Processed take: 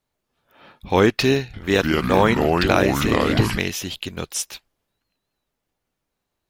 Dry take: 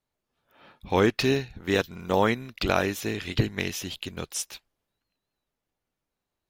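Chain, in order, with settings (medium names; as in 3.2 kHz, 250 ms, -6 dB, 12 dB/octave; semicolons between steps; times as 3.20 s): 1.44–3.58 s: ever faster or slower copies 96 ms, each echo -4 st, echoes 3; trim +5.5 dB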